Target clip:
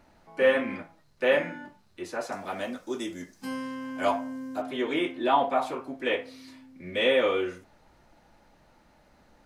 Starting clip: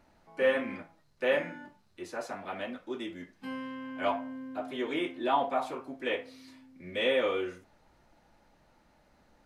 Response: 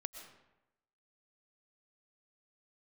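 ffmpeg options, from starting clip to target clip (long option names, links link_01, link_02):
-filter_complex "[0:a]asettb=1/sr,asplit=3[link_01][link_02][link_03];[link_01]atrim=end=2.324[link_04];[link_02]atrim=start=2.32:end=4.62,asetpts=PTS-STARTPTS,afade=type=in:duration=0.004:curve=qsin,afade=type=out:start_time=2.296:duration=0.004:curve=qsin,highshelf=frequency=4300:width_type=q:width=1.5:gain=11[link_05];[link_03]atrim=start=4.616[link_06];[link_04][link_05]acrossfade=duration=0.004:curve1=hsin:curve2=qsin[link_07];[link_07][link_06]acrossfade=duration=0.004:curve1=qsin:curve2=hsin,volume=4.5dB"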